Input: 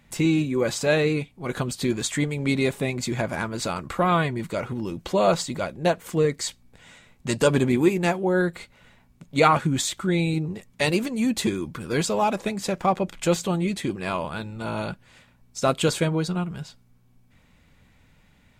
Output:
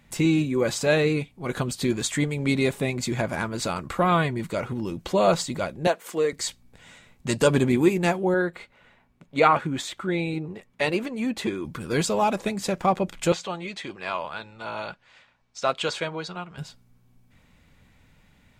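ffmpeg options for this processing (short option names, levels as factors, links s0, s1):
-filter_complex "[0:a]asettb=1/sr,asplit=3[s0][s1][s2];[s0]atrim=end=5.874[s3];[s1]atrim=start=5.87:end=6.33,asetpts=PTS-STARTPTS,afade=t=in:d=0.004:c=qsin,afade=t=out:st=0.456:d=0.004:c=qsin,highpass=370[s4];[s2]atrim=start=6.326[s5];[s3][s4]acrossfade=d=0.004:c1=hsin:c2=qsin[s6];[s6][s5]acrossfade=d=0.004:c1=qsin:c2=hsin,asettb=1/sr,asplit=3[s7][s8][s9];[s7]atrim=end=8.344[s10];[s8]atrim=start=8.34:end=11.65,asetpts=PTS-STARTPTS,afade=t=in:d=0.004:c=qsin,afade=t=out:st=3.306:d=0.004:c=qsin,bass=f=250:g=-8,treble=f=4000:g=-11[s11];[s9]atrim=start=11.646[s12];[s10][s11]acrossfade=d=0.004:c1=hsin:c2=qsin[s13];[s13][s12]acrossfade=d=0.004:c1=qsin:c2=hsin,asettb=1/sr,asplit=3[s14][s15][s16];[s14]atrim=end=13.324[s17];[s15]atrim=start=13.32:end=16.58,asetpts=PTS-STARTPTS,afade=t=in:d=0.004:c=qsin,afade=t=out:st=3.256:d=0.004:c=qsin,acrossover=split=520 6300:gain=0.2 1 0.0708[s18][s19][s20];[s18][s19][s20]amix=inputs=3:normalize=0[s21];[s16]atrim=start=16.576[s22];[s17][s21]acrossfade=d=0.004:c1=hsin:c2=qsin[s23];[s23][s22]acrossfade=d=0.004:c1=qsin:c2=hsin"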